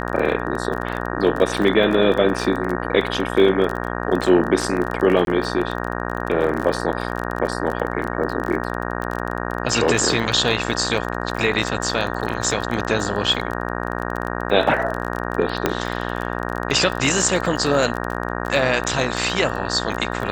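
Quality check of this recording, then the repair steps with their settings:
mains buzz 60 Hz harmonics 31 −26 dBFS
surface crackle 27 per second −24 dBFS
0:05.25–0:05.27: drop-out 22 ms
0:15.66: click −3 dBFS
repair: click removal
hum removal 60 Hz, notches 31
repair the gap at 0:05.25, 22 ms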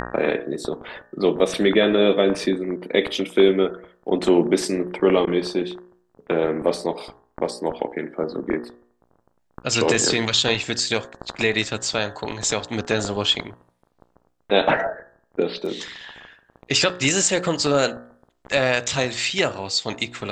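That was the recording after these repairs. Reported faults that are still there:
0:15.66: click

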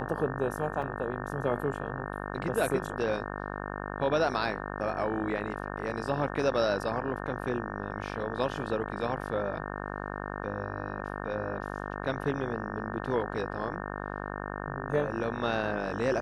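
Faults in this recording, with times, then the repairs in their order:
mains buzz 50 Hz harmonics 36 −37 dBFS
0:00.82: drop-out 4.5 ms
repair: hum removal 50 Hz, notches 36
repair the gap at 0:00.82, 4.5 ms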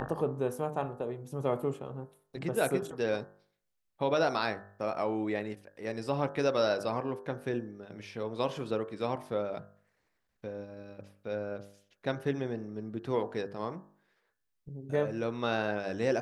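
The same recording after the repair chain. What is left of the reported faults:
none of them is left

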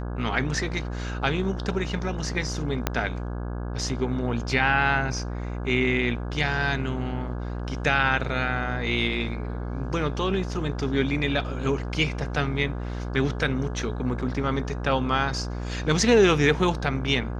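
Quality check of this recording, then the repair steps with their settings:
mains buzz 60 Hz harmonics 28 −31 dBFS
0:02.87: click −7 dBFS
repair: click removal
hum removal 60 Hz, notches 28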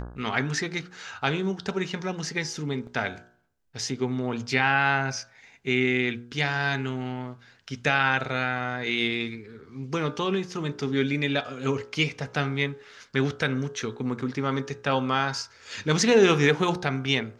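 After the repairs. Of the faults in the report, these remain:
0:02.87: click

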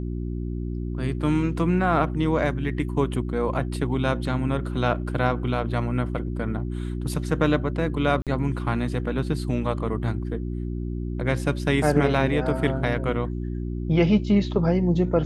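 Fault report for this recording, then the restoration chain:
mains hum 60 Hz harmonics 6 −29 dBFS
0:08.22–0:08.27: drop-out 47 ms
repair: hum removal 60 Hz, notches 6
repair the gap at 0:08.22, 47 ms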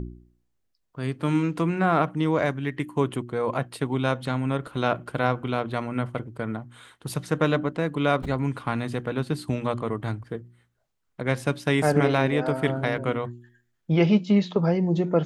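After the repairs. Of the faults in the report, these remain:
none of them is left

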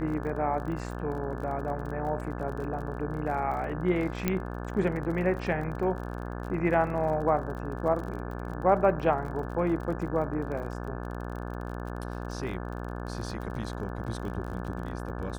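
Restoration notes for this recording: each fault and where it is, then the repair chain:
mains buzz 60 Hz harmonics 29 −36 dBFS
surface crackle 36 per second −37 dBFS
0:04.28: click −12 dBFS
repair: click removal
hum removal 60 Hz, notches 29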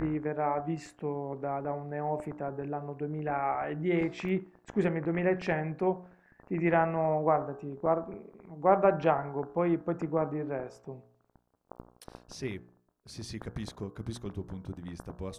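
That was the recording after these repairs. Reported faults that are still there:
0:04.28: click

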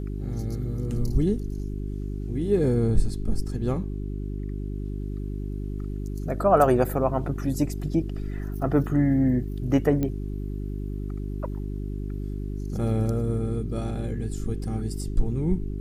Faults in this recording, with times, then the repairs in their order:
mains hum 50 Hz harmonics 8 −31 dBFS
0:10.03: click −15 dBFS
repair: click removal
hum removal 50 Hz, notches 8

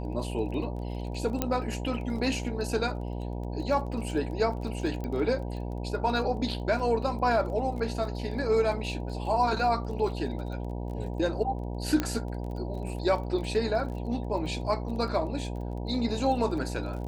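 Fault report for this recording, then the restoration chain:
mains buzz 60 Hz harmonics 16 −34 dBFS
surface crackle 23 per second −38 dBFS
0:01.42: click −11 dBFS
0:05.04: click −23 dBFS
0:12.00: click −13 dBFS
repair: click removal
hum removal 60 Hz, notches 16

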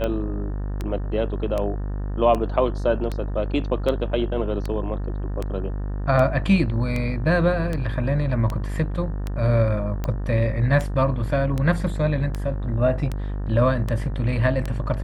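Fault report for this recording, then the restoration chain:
mains buzz 50 Hz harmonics 37 −27 dBFS
scratch tick 78 rpm −14 dBFS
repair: click removal
hum removal 50 Hz, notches 37

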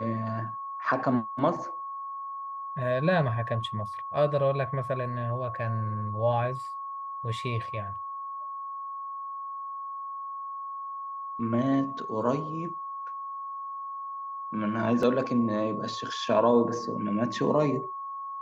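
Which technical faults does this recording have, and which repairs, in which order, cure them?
whistle 1,100 Hz −34 dBFS
0:15.03: drop-out 2.1 ms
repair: notch filter 1,100 Hz, Q 30
repair the gap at 0:15.03, 2.1 ms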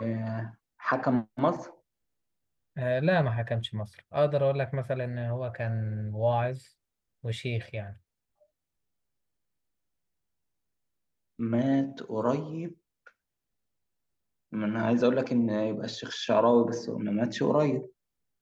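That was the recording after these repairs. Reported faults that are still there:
none of them is left

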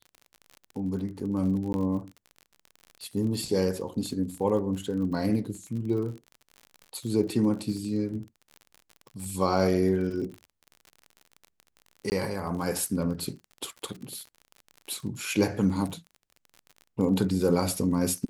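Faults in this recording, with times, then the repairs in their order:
surface crackle 44 per second −36 dBFS
0:01.73–0:01.74: drop-out 11 ms
0:12.10–0:12.12: drop-out 19 ms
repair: click removal
repair the gap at 0:01.73, 11 ms
repair the gap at 0:12.10, 19 ms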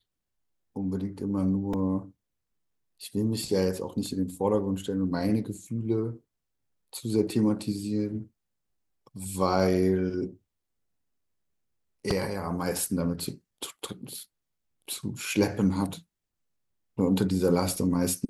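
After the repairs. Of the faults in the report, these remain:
none of them is left

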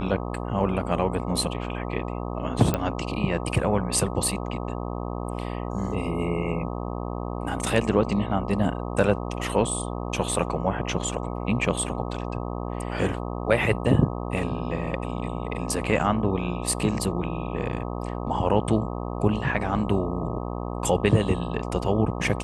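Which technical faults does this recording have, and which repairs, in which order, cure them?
mains buzz 60 Hz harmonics 21 −31 dBFS
0:02.74: click −10 dBFS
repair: click removal
hum removal 60 Hz, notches 21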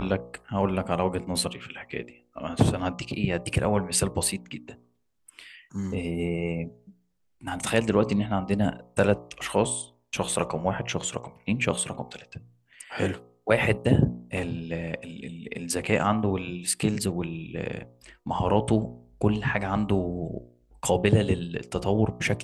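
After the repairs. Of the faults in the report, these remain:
none of them is left

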